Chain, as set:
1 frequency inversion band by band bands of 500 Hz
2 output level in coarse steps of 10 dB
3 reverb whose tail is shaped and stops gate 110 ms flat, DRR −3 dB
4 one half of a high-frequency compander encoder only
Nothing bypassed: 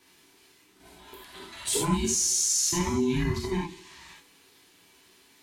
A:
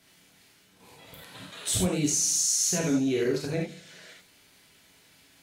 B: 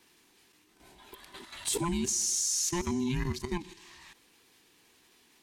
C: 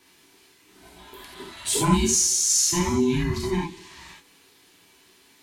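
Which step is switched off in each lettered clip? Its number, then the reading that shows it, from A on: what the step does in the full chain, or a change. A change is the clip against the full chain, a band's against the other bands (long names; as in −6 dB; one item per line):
1, 1 kHz band −8.5 dB
3, change in momentary loudness spread +5 LU
2, change in integrated loudness +4.0 LU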